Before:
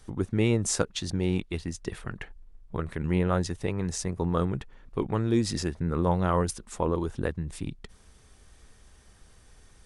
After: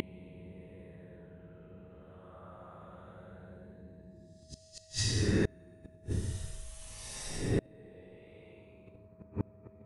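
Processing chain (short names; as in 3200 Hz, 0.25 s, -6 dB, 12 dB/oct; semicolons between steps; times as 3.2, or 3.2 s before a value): Paulstretch 16×, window 0.05 s, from 3.16; flipped gate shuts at -23 dBFS, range -33 dB; whine 640 Hz -66 dBFS; gain +6 dB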